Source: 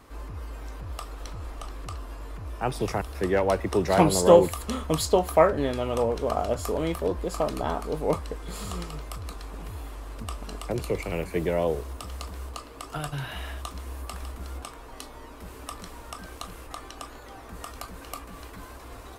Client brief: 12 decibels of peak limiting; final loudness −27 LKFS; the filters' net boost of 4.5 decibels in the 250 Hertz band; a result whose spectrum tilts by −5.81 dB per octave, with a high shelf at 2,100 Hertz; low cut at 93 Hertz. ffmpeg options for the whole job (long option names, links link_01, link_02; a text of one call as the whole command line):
ffmpeg -i in.wav -af "highpass=93,equalizer=frequency=250:width_type=o:gain=7,highshelf=frequency=2100:gain=-9,volume=1dB,alimiter=limit=-13dB:level=0:latency=1" out.wav